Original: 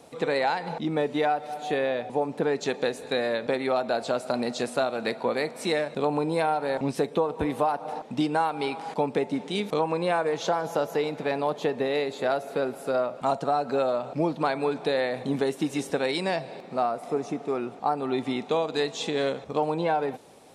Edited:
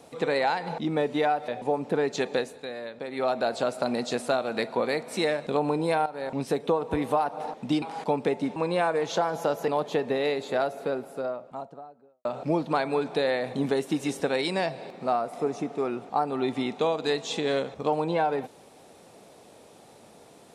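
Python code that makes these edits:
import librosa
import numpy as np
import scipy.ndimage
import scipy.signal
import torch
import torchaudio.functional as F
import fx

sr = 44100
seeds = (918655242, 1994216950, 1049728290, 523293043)

y = fx.studio_fade_out(x, sr, start_s=12.08, length_s=1.87)
y = fx.edit(y, sr, fx.cut(start_s=1.48, length_s=0.48),
    fx.fade_down_up(start_s=2.85, length_s=0.93, db=-10.0, fade_s=0.24),
    fx.fade_in_from(start_s=6.54, length_s=0.71, curve='qsin', floor_db=-12.0),
    fx.cut(start_s=8.3, length_s=0.42),
    fx.cut(start_s=9.46, length_s=0.41),
    fx.cut(start_s=10.99, length_s=0.39), tone=tone)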